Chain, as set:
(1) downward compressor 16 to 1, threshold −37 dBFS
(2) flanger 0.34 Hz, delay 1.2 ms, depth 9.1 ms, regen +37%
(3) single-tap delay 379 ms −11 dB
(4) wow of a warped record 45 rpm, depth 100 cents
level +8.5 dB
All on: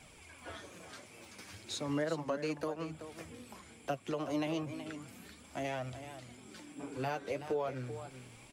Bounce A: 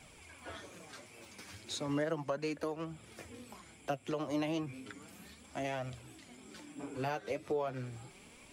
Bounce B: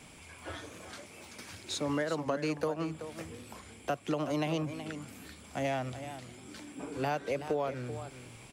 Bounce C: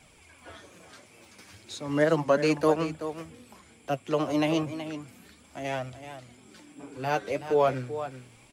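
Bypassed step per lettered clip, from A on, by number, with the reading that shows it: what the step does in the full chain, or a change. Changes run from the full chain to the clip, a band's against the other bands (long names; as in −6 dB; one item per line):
3, change in momentary loudness spread +1 LU
2, change in integrated loudness +3.5 LU
1, average gain reduction 3.5 dB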